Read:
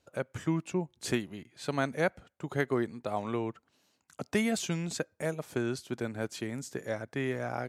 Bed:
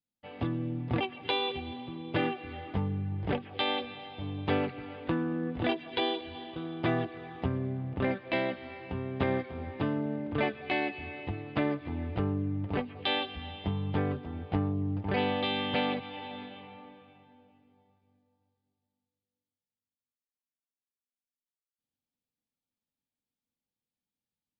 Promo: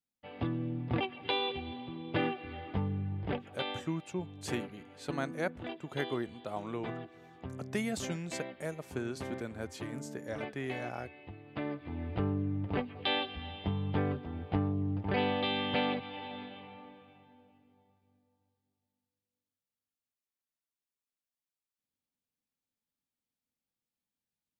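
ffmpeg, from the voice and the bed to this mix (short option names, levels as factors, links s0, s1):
-filter_complex "[0:a]adelay=3400,volume=0.531[s0];[1:a]volume=2.66,afade=t=out:st=3.06:d=0.84:silence=0.316228,afade=t=in:st=11.43:d=0.82:silence=0.298538[s1];[s0][s1]amix=inputs=2:normalize=0"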